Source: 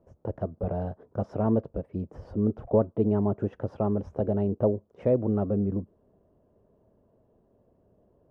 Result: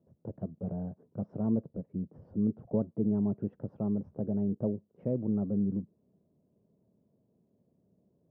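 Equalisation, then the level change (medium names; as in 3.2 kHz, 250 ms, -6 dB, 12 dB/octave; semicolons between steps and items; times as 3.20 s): band-pass filter 170 Hz, Q 1.9; tilt EQ +2 dB/octave; +5.0 dB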